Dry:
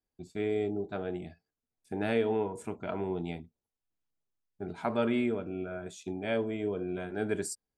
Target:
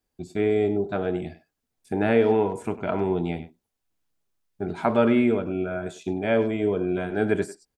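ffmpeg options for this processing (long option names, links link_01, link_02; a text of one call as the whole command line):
ffmpeg -i in.wav -filter_complex "[0:a]asplit=2[link_01][link_02];[link_02]adelay=100,highpass=300,lowpass=3400,asoftclip=type=hard:threshold=-24.5dB,volume=-14dB[link_03];[link_01][link_03]amix=inputs=2:normalize=0,acrossover=split=2700[link_04][link_05];[link_05]acompressor=threshold=-54dB:ratio=4:attack=1:release=60[link_06];[link_04][link_06]amix=inputs=2:normalize=0,volume=9dB" out.wav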